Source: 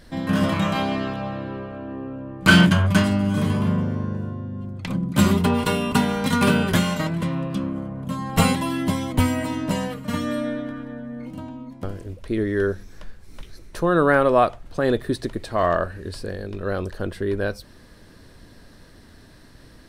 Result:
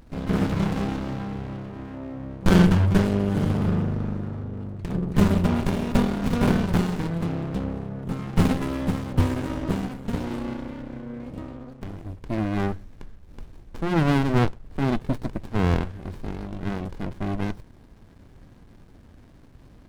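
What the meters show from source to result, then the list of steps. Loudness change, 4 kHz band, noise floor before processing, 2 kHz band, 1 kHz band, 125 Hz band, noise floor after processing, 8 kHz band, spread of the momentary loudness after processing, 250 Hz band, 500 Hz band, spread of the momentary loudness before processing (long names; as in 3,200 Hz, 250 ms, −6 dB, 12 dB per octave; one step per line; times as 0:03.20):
−3.0 dB, −9.5 dB, −48 dBFS, −10.0 dB, −6.5 dB, 0.0 dB, −50 dBFS, −9.5 dB, 15 LU, −2.0 dB, −6.0 dB, 16 LU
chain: windowed peak hold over 65 samples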